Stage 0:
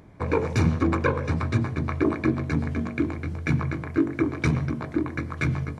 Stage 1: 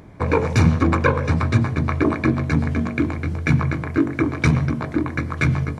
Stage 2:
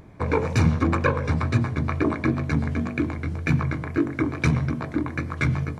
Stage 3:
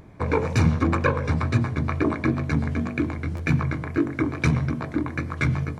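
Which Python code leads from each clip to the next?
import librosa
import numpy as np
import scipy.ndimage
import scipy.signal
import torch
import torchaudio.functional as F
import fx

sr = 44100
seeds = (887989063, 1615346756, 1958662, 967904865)

y1 = fx.dynamic_eq(x, sr, hz=360.0, q=2.6, threshold_db=-36.0, ratio=4.0, max_db=-5)
y1 = F.gain(torch.from_numpy(y1), 6.5).numpy()
y2 = fx.wow_flutter(y1, sr, seeds[0], rate_hz=2.1, depth_cents=41.0)
y2 = F.gain(torch.from_numpy(y2), -4.0).numpy()
y3 = fx.buffer_glitch(y2, sr, at_s=(3.36,), block=512, repeats=2)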